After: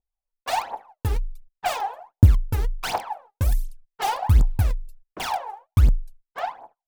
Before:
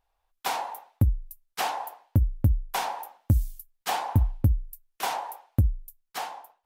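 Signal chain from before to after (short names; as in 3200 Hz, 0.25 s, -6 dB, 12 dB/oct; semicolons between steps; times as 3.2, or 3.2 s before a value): gate -51 dBFS, range -21 dB; low-pass opened by the level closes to 730 Hz, open at -22 dBFS; in parallel at -6.5 dB: wrapped overs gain 23 dB; on the sum: phaser 1.4 Hz, delay 2.5 ms, feedback 79%; wide varispeed 0.968×; gain -3 dB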